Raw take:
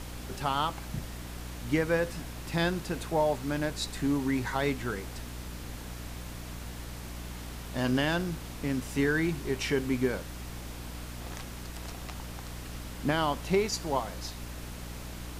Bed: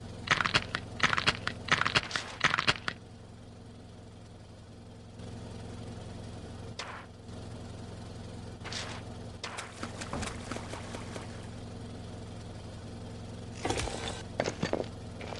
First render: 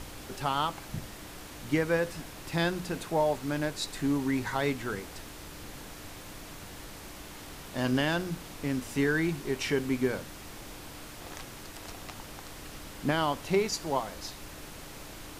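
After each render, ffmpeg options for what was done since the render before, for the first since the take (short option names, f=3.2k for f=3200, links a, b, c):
-af "bandreject=f=60:t=h:w=4,bandreject=f=120:t=h:w=4,bandreject=f=180:t=h:w=4,bandreject=f=240:t=h:w=4"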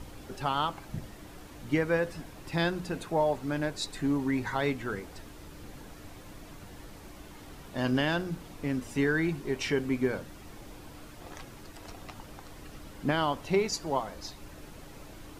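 -af "afftdn=nr=8:nf=-45"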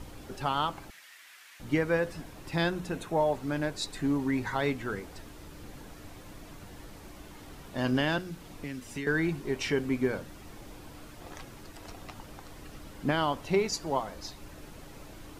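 -filter_complex "[0:a]asettb=1/sr,asplit=3[a][b][c];[a]atrim=end=0.904[d];[b]atrim=start=0.9:end=1.6,asetpts=PTS-STARTPTS,afade=t=in:d=0.004:c=qsin,afade=t=out:st=0.696:d=0.004:c=qsin,highpass=f=1.9k:t=q:w=1.8[e];[c]atrim=start=1.596[f];[d][e]acrossfade=d=0.004:c1=hsin:c2=qsin[g];[g][f]acrossfade=d=0.004:c1=qsin:c2=hsin,asettb=1/sr,asplit=3[h][i][j];[h]atrim=end=2.694[k];[i]atrim=start=2.69:end=3.34,asetpts=PTS-STARTPTS,afade=t=in:d=0.004:c=qsin,afade=t=out:st=0.646:d=0.004:c=qsin,bandreject=f=4.7k:w=10[l];[j]atrim=start=3.336[m];[k][l]acrossfade=d=0.004:c1=hsin:c2=qsin[n];[n][m]acrossfade=d=0.004:c1=qsin:c2=hsin,asettb=1/sr,asplit=3[o][p][q];[o]atrim=end=8.184[r];[p]atrim=start=8.18:end=9.07,asetpts=PTS-STARTPTS,afade=t=in:d=0.004:c=qsin,afade=t=out:st=0.886:d=0.004:c=qsin,acrossover=split=430|1600[s][t][u];[s]acompressor=threshold=-38dB:ratio=4[v];[t]acompressor=threshold=-52dB:ratio=4[w];[u]acompressor=threshold=-40dB:ratio=4[x];[v][w][x]amix=inputs=3:normalize=0[y];[q]atrim=start=9.066[z];[r][y]acrossfade=d=0.004:c1=hsin:c2=qsin[aa];[aa][z]acrossfade=d=0.004:c1=qsin:c2=hsin"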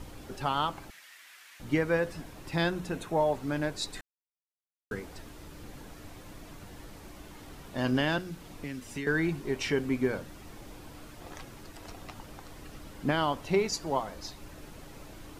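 -filter_complex "[0:a]asplit=3[a][b][c];[a]atrim=end=4.01,asetpts=PTS-STARTPTS,afade=t=out:st=4.006:d=0.004:c=hsin[d];[b]atrim=start=4.01:end=4.91,asetpts=PTS-STARTPTS,volume=0[e];[c]atrim=start=4.91,asetpts=PTS-STARTPTS,afade=t=in:d=0.004:c=hsin[f];[d][e][f]concat=n=3:v=0:a=1"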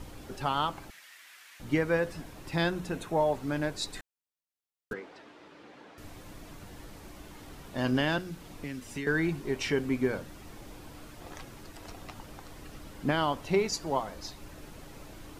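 -filter_complex "[0:a]asettb=1/sr,asplit=3[a][b][c];[a]atrim=end=4.934[d];[b]atrim=start=4.93:end=5.98,asetpts=PTS-STARTPTS,afade=t=in:d=0.004:c=qsin,afade=t=out:st=1.046:d=0.004:c=qsin,highpass=320,lowpass=3.3k[e];[c]atrim=start=5.976[f];[d][e]acrossfade=d=0.004:c1=hsin:c2=qsin[g];[g][f]acrossfade=d=0.004:c1=qsin:c2=hsin"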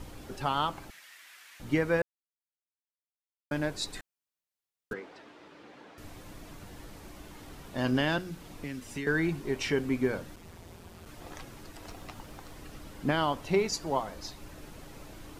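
-filter_complex "[0:a]asplit=3[a][b][c];[a]afade=t=out:st=10.35:d=0.02[d];[b]aeval=exprs='val(0)*sin(2*PI*85*n/s)':c=same,afade=t=in:st=10.35:d=0.02,afade=t=out:st=11.05:d=0.02[e];[c]afade=t=in:st=11.05:d=0.02[f];[d][e][f]amix=inputs=3:normalize=0,asettb=1/sr,asplit=3[g][h][i];[g]atrim=end=11.824[j];[h]atrim=start=11.82:end=12.54,asetpts=PTS-STARTPTS,afade=t=in:d=0.004:c=qsin,afade=t=out:st=0.716:d=0.004:c=qsin,acrusher=bits=8:mode=log:mix=0:aa=0.000001[k];[i]atrim=start=12.536[l];[j][k]acrossfade=d=0.004:c1=hsin:c2=qsin[m];[m][l]acrossfade=d=0.004:c1=qsin:c2=hsin,asplit=3[n][o][p];[n]atrim=end=2.02,asetpts=PTS-STARTPTS,afade=t=out:st=2.016:d=0.004:c=hsin[q];[o]atrim=start=2.02:end=3.51,asetpts=PTS-STARTPTS,volume=0[r];[p]atrim=start=3.51,asetpts=PTS-STARTPTS,afade=t=in:d=0.004:c=hsin[s];[q][r][s]concat=n=3:v=0:a=1"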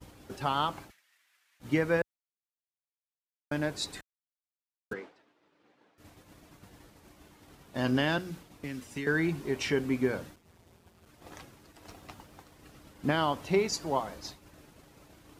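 -af "highpass=55,agate=range=-33dB:threshold=-41dB:ratio=3:detection=peak"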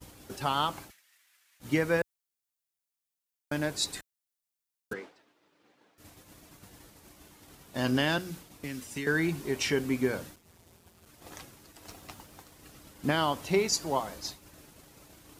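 -af "highshelf=f=4.7k:g=9.5"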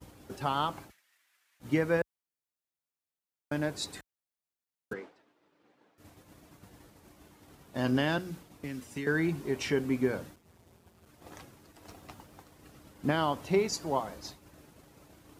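-af "highpass=46,highshelf=f=2.2k:g=-8"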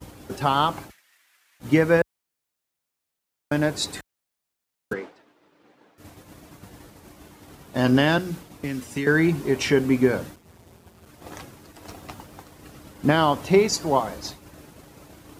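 -af "volume=9.5dB"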